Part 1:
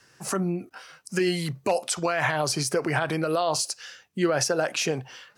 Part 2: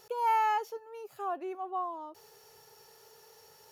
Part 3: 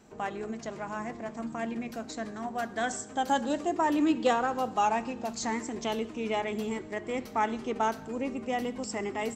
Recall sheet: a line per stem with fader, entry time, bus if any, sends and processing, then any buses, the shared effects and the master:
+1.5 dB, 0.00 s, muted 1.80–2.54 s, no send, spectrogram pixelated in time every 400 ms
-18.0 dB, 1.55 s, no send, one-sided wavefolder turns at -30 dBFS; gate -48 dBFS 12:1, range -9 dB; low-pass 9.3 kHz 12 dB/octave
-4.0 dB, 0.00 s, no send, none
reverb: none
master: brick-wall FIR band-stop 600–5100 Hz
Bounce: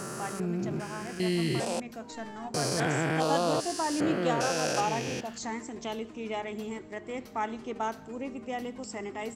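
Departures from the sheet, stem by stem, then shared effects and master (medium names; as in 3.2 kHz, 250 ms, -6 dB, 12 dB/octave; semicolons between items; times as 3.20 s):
stem 2: entry 1.55 s -> 1.90 s; master: missing brick-wall FIR band-stop 600–5100 Hz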